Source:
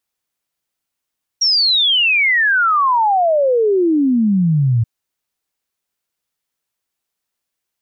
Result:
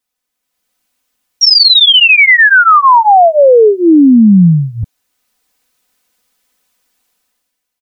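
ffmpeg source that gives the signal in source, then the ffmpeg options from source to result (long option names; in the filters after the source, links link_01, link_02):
-f lavfi -i "aevalsrc='0.282*clip(min(t,3.43-t)/0.01,0,1)*sin(2*PI*5700*3.43/log(110/5700)*(exp(log(110/5700)*t/3.43)-1))':duration=3.43:sample_rate=44100"
-af "aecho=1:1:4:0.94,alimiter=limit=-10.5dB:level=0:latency=1:release=43,dynaudnorm=framelen=100:gausssize=13:maxgain=14dB"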